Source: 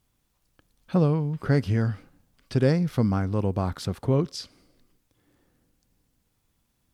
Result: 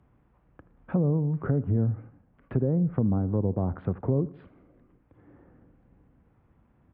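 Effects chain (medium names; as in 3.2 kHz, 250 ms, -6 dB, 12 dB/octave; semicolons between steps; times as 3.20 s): Gaussian low-pass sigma 4.8 samples; peak limiter -16.5 dBFS, peak gain reduction 5.5 dB; high-pass 43 Hz 12 dB/octave; low-pass that closes with the level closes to 650 Hz, closed at -21.5 dBFS; on a send: feedback delay 79 ms, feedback 41%, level -20 dB; on the sum: three bands compressed up and down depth 40%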